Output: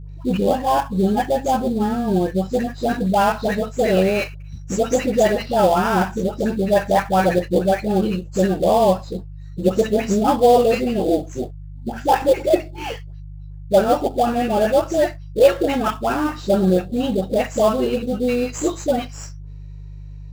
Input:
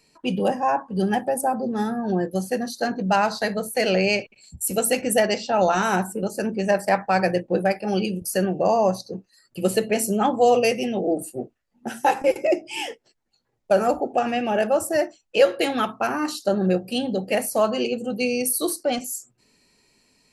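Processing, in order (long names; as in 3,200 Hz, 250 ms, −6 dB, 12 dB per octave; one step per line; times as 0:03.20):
hearing-aid frequency compression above 3,300 Hz 1.5 to 1
high-shelf EQ 2,600 Hz −9.5 dB
all-pass dispersion highs, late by 93 ms, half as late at 950 Hz
in parallel at −8 dB: sample-rate reduction 4,100 Hz, jitter 20%
on the sum: hum with harmonics 50 Hz, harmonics 3, −37 dBFS −5 dB per octave
level +2 dB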